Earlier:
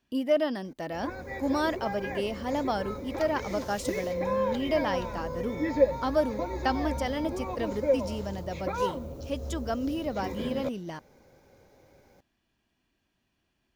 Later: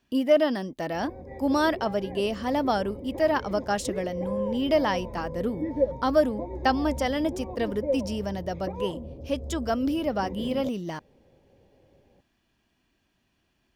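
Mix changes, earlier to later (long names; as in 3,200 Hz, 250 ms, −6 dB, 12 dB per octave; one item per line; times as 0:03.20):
speech +4.5 dB
background: add moving average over 31 samples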